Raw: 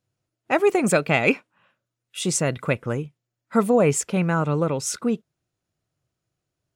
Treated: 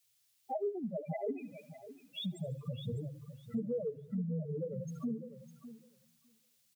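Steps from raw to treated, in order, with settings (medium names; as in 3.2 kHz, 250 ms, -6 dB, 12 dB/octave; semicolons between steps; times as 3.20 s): high-pass 79 Hz 6 dB/octave; treble shelf 7.1 kHz -12 dB; on a send at -6.5 dB: reverberation RT60 0.60 s, pre-delay 4 ms; on the sum: loudest bins only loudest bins 2; word length cut 12-bit, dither triangular; feedback echo behind a high-pass 74 ms, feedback 57%, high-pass 1.4 kHz, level -17 dB; compression 5:1, threshold -38 dBFS, peak gain reduction 21 dB; feedback delay 604 ms, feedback 19%, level -10 dB; three bands expanded up and down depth 40%; trim +1 dB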